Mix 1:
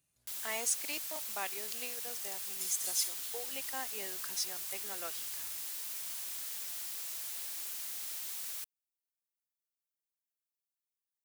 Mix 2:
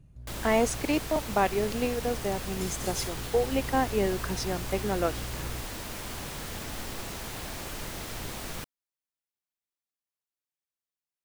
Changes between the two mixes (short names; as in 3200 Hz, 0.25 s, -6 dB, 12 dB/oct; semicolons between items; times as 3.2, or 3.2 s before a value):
speech -3.0 dB; master: remove differentiator